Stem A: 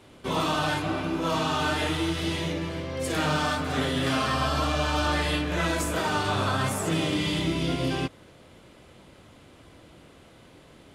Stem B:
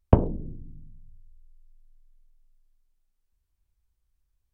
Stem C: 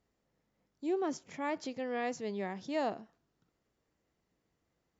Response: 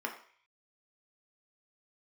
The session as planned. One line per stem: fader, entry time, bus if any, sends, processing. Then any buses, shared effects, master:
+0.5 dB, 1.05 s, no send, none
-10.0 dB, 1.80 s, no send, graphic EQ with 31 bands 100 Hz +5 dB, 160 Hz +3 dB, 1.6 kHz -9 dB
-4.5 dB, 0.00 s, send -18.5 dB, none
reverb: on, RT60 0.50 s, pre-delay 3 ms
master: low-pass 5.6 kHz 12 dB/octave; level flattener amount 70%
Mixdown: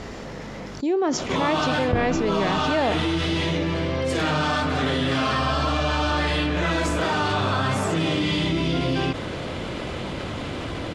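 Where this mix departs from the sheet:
stem A +0.5 dB -> -6.0 dB; stem C -4.5 dB -> +5.0 dB

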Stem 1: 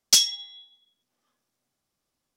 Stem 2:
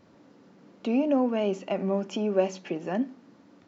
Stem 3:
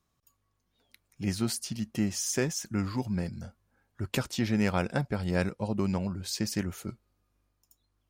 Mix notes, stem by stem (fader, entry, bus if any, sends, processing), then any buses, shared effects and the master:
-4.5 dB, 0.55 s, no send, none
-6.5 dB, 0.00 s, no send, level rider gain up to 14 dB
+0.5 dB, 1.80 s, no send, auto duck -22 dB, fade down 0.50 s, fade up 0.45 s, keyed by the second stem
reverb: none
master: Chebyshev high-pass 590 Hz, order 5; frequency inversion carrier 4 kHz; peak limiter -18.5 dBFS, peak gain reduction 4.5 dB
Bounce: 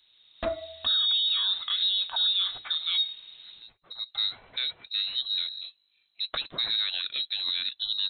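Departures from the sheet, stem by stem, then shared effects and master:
stem 1: entry 0.55 s -> 0.30 s; stem 3: entry 1.80 s -> 2.20 s; master: missing Chebyshev high-pass 590 Hz, order 5

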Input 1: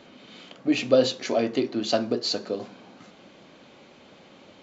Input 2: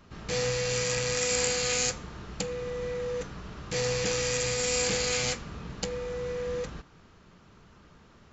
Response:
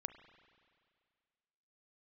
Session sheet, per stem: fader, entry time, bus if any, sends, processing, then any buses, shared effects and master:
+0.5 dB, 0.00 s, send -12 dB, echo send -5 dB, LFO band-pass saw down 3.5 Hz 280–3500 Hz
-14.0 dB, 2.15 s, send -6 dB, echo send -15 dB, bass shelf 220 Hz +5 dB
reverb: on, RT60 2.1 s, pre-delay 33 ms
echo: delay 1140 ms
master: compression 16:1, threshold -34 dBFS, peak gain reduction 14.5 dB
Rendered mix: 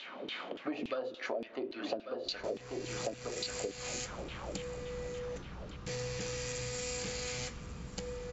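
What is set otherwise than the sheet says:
stem 1 +0.5 dB -> +10.5 dB; reverb return +8.0 dB

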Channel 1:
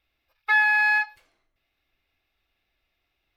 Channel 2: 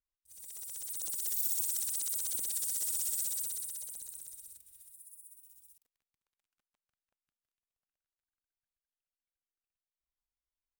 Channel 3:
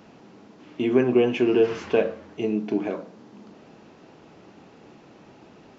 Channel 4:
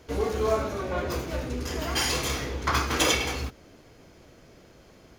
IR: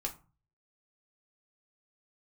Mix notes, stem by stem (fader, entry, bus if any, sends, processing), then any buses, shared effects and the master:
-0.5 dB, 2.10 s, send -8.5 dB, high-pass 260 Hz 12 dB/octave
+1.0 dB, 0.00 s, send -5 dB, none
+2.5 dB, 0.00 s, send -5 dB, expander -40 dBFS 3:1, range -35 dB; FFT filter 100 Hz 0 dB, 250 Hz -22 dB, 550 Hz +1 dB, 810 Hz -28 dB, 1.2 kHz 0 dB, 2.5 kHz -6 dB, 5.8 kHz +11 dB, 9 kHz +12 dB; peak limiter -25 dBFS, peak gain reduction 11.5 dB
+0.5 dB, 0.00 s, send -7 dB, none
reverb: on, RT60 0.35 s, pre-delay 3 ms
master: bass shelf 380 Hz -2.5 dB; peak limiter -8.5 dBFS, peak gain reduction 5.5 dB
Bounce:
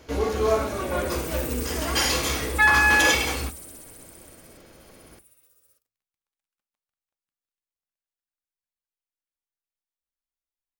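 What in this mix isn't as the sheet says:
stem 2 +1.0 dB -> -7.0 dB; stem 3 +2.5 dB -> -9.0 dB

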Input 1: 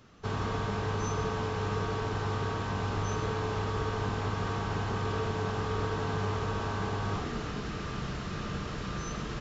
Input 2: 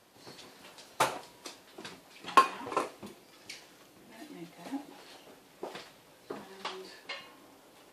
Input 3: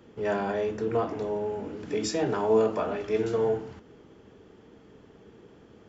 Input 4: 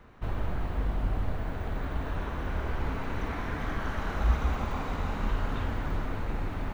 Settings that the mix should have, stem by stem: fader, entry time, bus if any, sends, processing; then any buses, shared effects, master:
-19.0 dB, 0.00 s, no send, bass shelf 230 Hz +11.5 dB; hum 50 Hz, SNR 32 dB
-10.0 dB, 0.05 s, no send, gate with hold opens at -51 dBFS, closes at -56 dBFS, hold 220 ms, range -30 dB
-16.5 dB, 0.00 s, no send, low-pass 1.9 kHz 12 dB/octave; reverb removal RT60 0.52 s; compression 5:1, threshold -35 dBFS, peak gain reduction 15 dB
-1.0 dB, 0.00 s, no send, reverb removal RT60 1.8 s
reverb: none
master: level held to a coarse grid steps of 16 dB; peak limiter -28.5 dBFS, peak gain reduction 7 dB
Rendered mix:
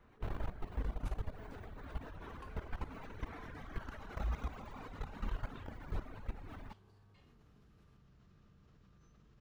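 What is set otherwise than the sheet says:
stem 1 -19.0 dB -> -28.0 dB; stem 2 -10.0 dB -> -20.0 dB

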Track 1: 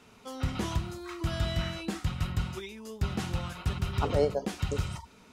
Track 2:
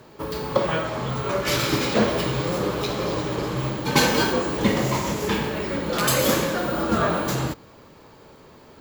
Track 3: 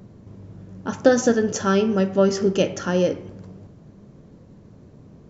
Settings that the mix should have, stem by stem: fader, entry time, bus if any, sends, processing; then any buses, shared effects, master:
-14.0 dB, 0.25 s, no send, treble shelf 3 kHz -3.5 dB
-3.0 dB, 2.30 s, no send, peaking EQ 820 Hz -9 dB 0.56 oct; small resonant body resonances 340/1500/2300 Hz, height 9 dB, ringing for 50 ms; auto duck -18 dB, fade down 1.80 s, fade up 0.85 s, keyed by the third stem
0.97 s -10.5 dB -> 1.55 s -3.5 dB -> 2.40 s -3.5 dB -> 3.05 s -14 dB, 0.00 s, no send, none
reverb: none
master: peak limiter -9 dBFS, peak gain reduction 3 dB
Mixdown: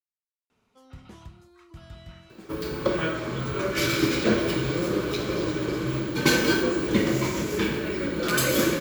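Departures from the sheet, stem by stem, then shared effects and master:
stem 1: entry 0.25 s -> 0.50 s; stem 3: muted; master: missing peak limiter -9 dBFS, peak gain reduction 3 dB

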